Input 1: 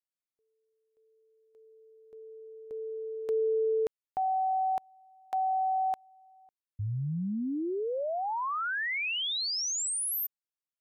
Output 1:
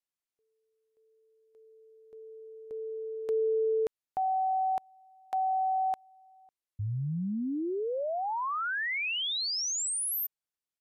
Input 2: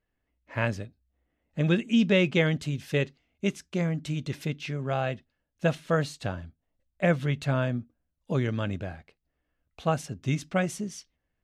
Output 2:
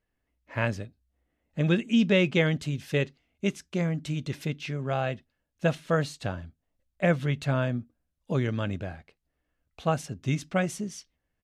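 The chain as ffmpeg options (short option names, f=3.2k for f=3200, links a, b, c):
-af "aresample=32000,aresample=44100"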